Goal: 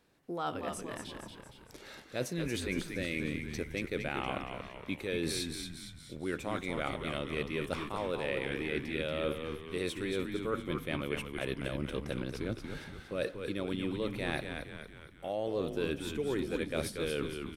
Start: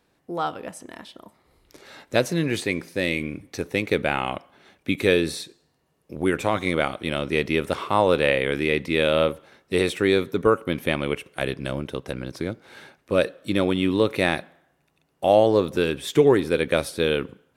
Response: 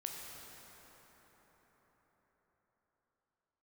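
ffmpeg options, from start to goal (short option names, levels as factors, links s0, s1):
-filter_complex "[0:a]equalizer=f=850:w=1.5:g=-2.5,areverse,acompressor=threshold=0.0398:ratio=10,areverse,asplit=7[s0][s1][s2][s3][s4][s5][s6];[s1]adelay=232,afreqshift=-77,volume=0.501[s7];[s2]adelay=464,afreqshift=-154,volume=0.26[s8];[s3]adelay=696,afreqshift=-231,volume=0.135[s9];[s4]adelay=928,afreqshift=-308,volume=0.0708[s10];[s5]adelay=1160,afreqshift=-385,volume=0.0367[s11];[s6]adelay=1392,afreqshift=-462,volume=0.0191[s12];[s0][s7][s8][s9][s10][s11][s12]amix=inputs=7:normalize=0,volume=0.708"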